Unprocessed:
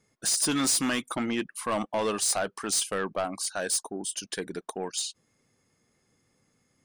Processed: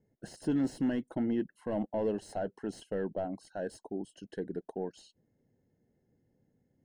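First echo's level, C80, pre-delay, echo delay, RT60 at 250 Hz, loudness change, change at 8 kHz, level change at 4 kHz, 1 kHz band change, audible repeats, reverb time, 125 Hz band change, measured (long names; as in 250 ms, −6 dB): no echo audible, no reverb audible, no reverb audible, no echo audible, no reverb audible, −7.5 dB, −29.0 dB, −23.5 dB, −11.0 dB, no echo audible, no reverb audible, −0.5 dB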